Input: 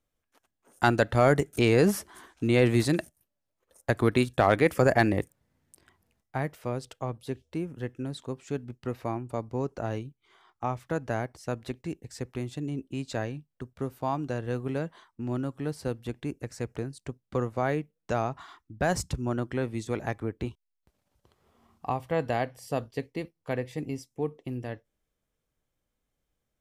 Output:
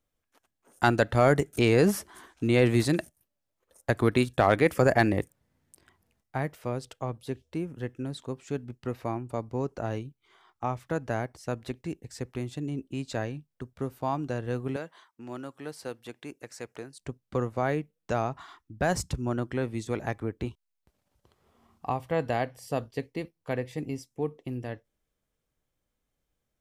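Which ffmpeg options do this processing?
-filter_complex "[0:a]asettb=1/sr,asplit=3[a][b][c];[a]atrim=end=14.764[d];[b]atrim=start=14.76:end=17,asetpts=PTS-STARTPTS,afade=t=in:d=0.004:c=qsin,afade=t=out:st=2.236:d=0.004:c=qsin,highpass=f=650:p=1[e];[c]atrim=start=16.996[f];[d][e]acrossfade=d=0.004:c1=hsin:c2=qsin[g];[g][f]acrossfade=d=0.004:c1=qsin:c2=hsin"

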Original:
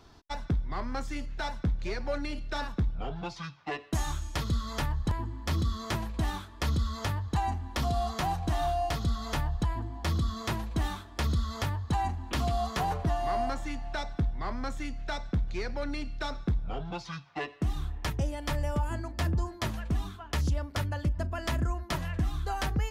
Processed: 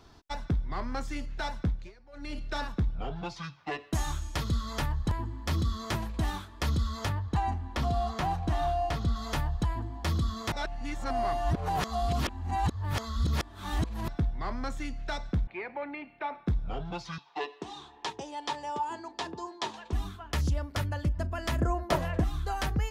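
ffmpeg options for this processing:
-filter_complex "[0:a]asettb=1/sr,asplit=3[a][b][c];[a]atrim=end=7.094[d];[b]atrim=start=7.09:end=9.16,asetpts=PTS-STARTPTS,afade=t=in:d=0.004:c=qsin,afade=t=out:st=2.066:d=0.004:c=qsin,aemphasis=mode=reproduction:type=cd[e];[c]atrim=start=9.156[f];[d][e]acrossfade=d=0.004:c1=hsin:c2=qsin[g];[g][f]acrossfade=d=0.004:c1=qsin:c2=hsin,asettb=1/sr,asplit=3[h][i][j];[h]atrim=end=15.474[k];[i]atrim=start=15.47:end=16.47,asetpts=PTS-STARTPTS,afade=t=in:d=0.004:c=qsin,afade=t=out:st=0.996:d=0.004:c=qsin,highpass=340,equalizer=f=470:t=q:w=4:g=-4,equalizer=f=870:t=q:w=4:g=6,equalizer=f=1.4k:t=q:w=4:g=-6,equalizer=f=2.3k:t=q:w=4:g=6,lowpass=f=2.5k:w=0.5412,lowpass=f=2.5k:w=1.3066[l];[j]atrim=start=16.466[m];[k][l]acrossfade=d=0.004:c1=hsin:c2=qsin[n];[n][m]acrossfade=d=0.004:c1=qsin:c2=hsin,asettb=1/sr,asplit=3[o][p][q];[o]atrim=end=17.184[r];[p]atrim=start=17.18:end=19.93,asetpts=PTS-STARTPTS,afade=t=in:d=0.004:c=qsin,afade=t=out:st=2.746:d=0.004:c=qsin,highpass=400,equalizer=f=410:t=q:w=4:g=7,equalizer=f=590:t=q:w=4:g=-7,equalizer=f=890:t=q:w=4:g=9,equalizer=f=1.4k:t=q:w=4:g=-6,equalizer=f=2.1k:t=q:w=4:g=-5,equalizer=f=3.7k:t=q:w=4:g=5,lowpass=f=7.6k:w=0.5412,lowpass=f=7.6k:w=1.3066[s];[q]atrim=start=19.926[t];[r][s]acrossfade=d=0.004:c1=hsin:c2=qsin[u];[u][t]acrossfade=d=0.004:c1=qsin:c2=hsin,asettb=1/sr,asplit=3[v][w][x];[v]atrim=end=21.614[y];[w]atrim=start=21.61:end=22.24,asetpts=PTS-STARTPTS,afade=t=in:d=0.004:c=qsin,afade=t=out:st=0.626:d=0.004:c=qsin,equalizer=f=550:w=0.84:g=12[z];[x]atrim=start=22.236[aa];[y][z]acrossfade=d=0.004:c1=hsin:c2=qsin[ab];[ab][aa]acrossfade=d=0.004:c1=qsin:c2=hsin,asplit=5[ac][ad][ae][af][ag];[ac]atrim=end=1.92,asetpts=PTS-STARTPTS,afade=t=out:st=1.67:d=0.25:silence=0.0749894[ah];[ad]atrim=start=1.92:end=2.12,asetpts=PTS-STARTPTS,volume=-22.5dB[ai];[ae]atrim=start=2.12:end=10.522,asetpts=PTS-STARTPTS,afade=t=in:d=0.25:silence=0.0749894[aj];[af]atrim=start=10.518:end=14.082,asetpts=PTS-STARTPTS,areverse[ak];[ag]atrim=start=14.078[al];[ah][ai][aj]concat=n=3:v=0:a=1[am];[am][ak]acrossfade=d=0.004:c1=hsin:c2=hsin[an];[an][al]acrossfade=d=0.004:c1=hsin:c2=hsin"

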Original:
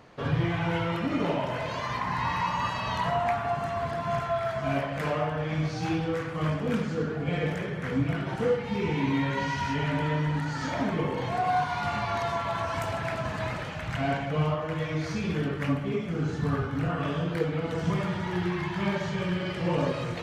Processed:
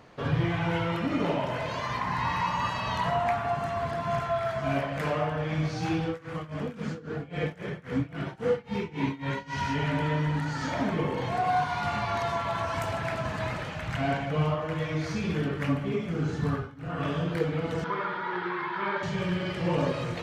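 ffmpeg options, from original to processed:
-filter_complex "[0:a]asettb=1/sr,asplit=3[a][b][c];[a]atrim=end=6.074[d];[b]atrim=start=6.07:end=9.58,asetpts=PTS-STARTPTS,afade=t=in:d=0.004:c=qsin,afade=t=out:st=3.506:d=0.004:c=qsin,tremolo=f=3.7:d=0.92[e];[c]atrim=start=9.576[f];[d][e]acrossfade=d=0.004:c1=hsin:c2=qsin[g];[g][f]acrossfade=d=0.004:c1=qsin:c2=hsin,asettb=1/sr,asplit=3[h][i][j];[h]atrim=end=17.844[k];[i]atrim=start=17.84:end=19.03,asetpts=PTS-STARTPTS,afade=t=in:d=0.004:c=qsin,afade=t=out:st=1.186:d=0.004:c=qsin,highpass=390,equalizer=f=440:t=q:w=4:g=5,equalizer=f=670:t=q:w=4:g=-7,equalizer=f=990:t=q:w=4:g=6,equalizer=f=1.4k:t=q:w=4:g=9,equalizer=f=2.8k:t=q:w=4:g=-7,lowpass=f=3.9k:w=0.5412,lowpass=f=3.9k:w=1.3066[l];[j]atrim=start=19.026[m];[k][l]acrossfade=d=0.004:c1=hsin:c2=qsin[n];[n][m]acrossfade=d=0.004:c1=qsin:c2=hsin,asplit=3[o][p][q];[o]atrim=end=16.75,asetpts=PTS-STARTPTS,afade=t=out:st=16.49:d=0.26:silence=0.0944061[r];[p]atrim=start=16.75:end=16.77,asetpts=PTS-STARTPTS,volume=-20.5dB[s];[q]atrim=start=16.77,asetpts=PTS-STARTPTS,afade=t=in:d=0.26:silence=0.0944061[t];[r][s][t]concat=n=3:v=0:a=1"

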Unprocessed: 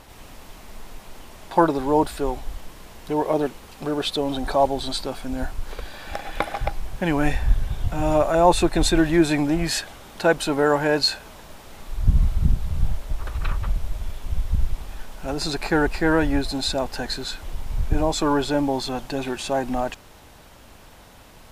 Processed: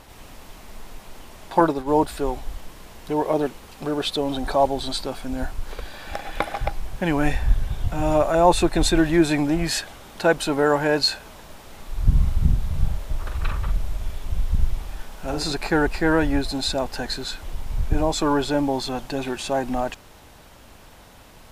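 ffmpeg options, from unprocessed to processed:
-filter_complex "[0:a]asettb=1/sr,asplit=3[a][b][c];[a]atrim=end=1.604[d];[b]atrim=start=1.6:end=2.08,asetpts=PTS-STARTPTS,afade=t=in:d=0.004:c=qsin,afade=t=out:st=0.476:d=0.004:c=qsin,agate=range=-33dB:threshold=-22dB:ratio=3:release=100:detection=peak[e];[c]atrim=start=2.076[f];[d][e]acrossfade=d=0.004:c1=hsin:c2=qsin[g];[g][f]acrossfade=d=0.004:c1=qsin:c2=hsin,asettb=1/sr,asplit=3[h][i][j];[h]atrim=end=11.924[k];[i]atrim=start=11.92:end=15.52,asetpts=PTS-STARTPTS,afade=t=in:d=0.004:c=qsin,afade=t=out:st=3.596:d=0.004:c=qsin,asplit=2[l][m];[m]adelay=46,volume=-6.5dB[n];[l][n]amix=inputs=2:normalize=0,atrim=end_sample=158760[o];[j]atrim=start=15.516[p];[k][o]acrossfade=d=0.004:c1=hsin:c2=qsin[q];[q][p]acrossfade=d=0.004:c1=qsin:c2=hsin"

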